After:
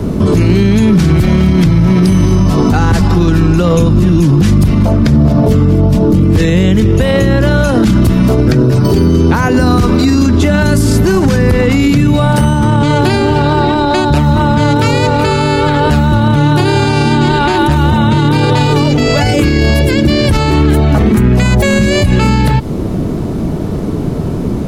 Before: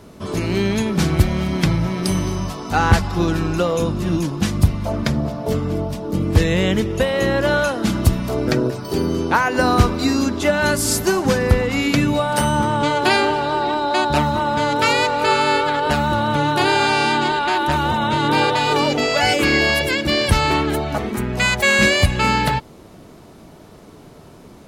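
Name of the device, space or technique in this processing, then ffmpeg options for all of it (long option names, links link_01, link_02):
mastering chain: -filter_complex "[0:a]equalizer=frequency=680:width_type=o:width=1.4:gain=-3.5,acrossover=split=160|1100|4100[link_01][link_02][link_03][link_04];[link_01]acompressor=threshold=-31dB:ratio=4[link_05];[link_02]acompressor=threshold=-31dB:ratio=4[link_06];[link_03]acompressor=threshold=-29dB:ratio=4[link_07];[link_04]acompressor=threshold=-30dB:ratio=4[link_08];[link_05][link_06][link_07][link_08]amix=inputs=4:normalize=0,acompressor=threshold=-25dB:ratio=2,asoftclip=type=tanh:threshold=-11.5dB,tiltshelf=frequency=730:gain=8.5,alimiter=level_in=23dB:limit=-1dB:release=50:level=0:latency=1,volume=-1dB"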